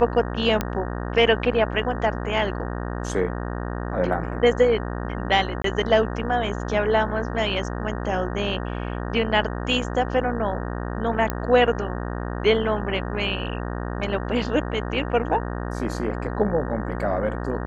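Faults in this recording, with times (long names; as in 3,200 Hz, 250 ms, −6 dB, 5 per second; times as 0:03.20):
mains buzz 60 Hz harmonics 31 −29 dBFS
0:00.61: click −9 dBFS
0:05.62–0:05.64: drop-out 23 ms
0:11.30: click −10 dBFS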